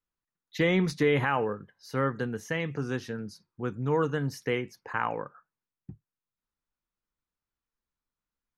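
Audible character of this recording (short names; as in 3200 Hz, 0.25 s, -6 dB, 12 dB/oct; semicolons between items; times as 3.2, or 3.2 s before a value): noise floor -93 dBFS; spectral tilt -5.0 dB/oct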